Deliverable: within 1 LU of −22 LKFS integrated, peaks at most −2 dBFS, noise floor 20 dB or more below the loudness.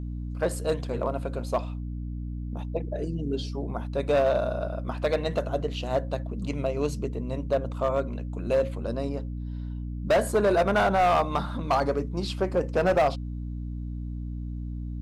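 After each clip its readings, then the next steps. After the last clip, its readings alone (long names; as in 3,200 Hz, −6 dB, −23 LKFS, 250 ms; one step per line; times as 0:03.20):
share of clipped samples 1.2%; peaks flattened at −17.0 dBFS; mains hum 60 Hz; hum harmonics up to 300 Hz; level of the hum −31 dBFS; integrated loudness −28.0 LKFS; sample peak −17.0 dBFS; target loudness −22.0 LKFS
→ clipped peaks rebuilt −17 dBFS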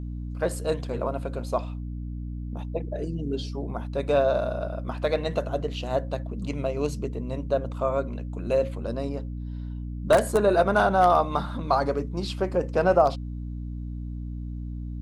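share of clipped samples 0.0%; mains hum 60 Hz; hum harmonics up to 300 Hz; level of the hum −31 dBFS
→ mains-hum notches 60/120/180/240/300 Hz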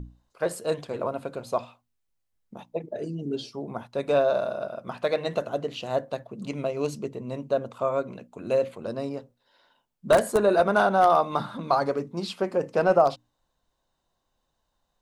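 mains hum none found; integrated loudness −26.5 LKFS; sample peak −7.5 dBFS; target loudness −22.0 LKFS
→ level +4.5 dB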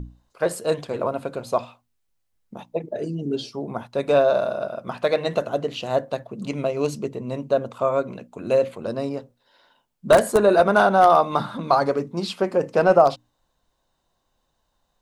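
integrated loudness −22.0 LKFS; sample peak −3.0 dBFS; background noise floor −73 dBFS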